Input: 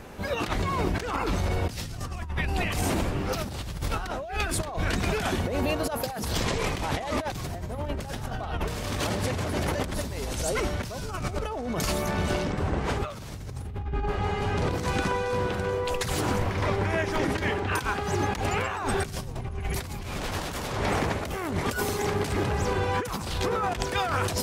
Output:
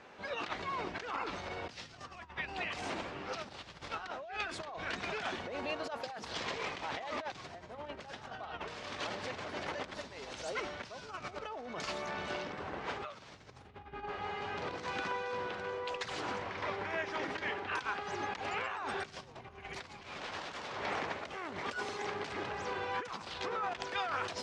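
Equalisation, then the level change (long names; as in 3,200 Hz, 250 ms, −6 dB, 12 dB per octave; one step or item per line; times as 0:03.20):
high-pass filter 840 Hz 6 dB per octave
low-pass filter 6,400 Hz 12 dB per octave
high-frequency loss of the air 91 metres
−5.0 dB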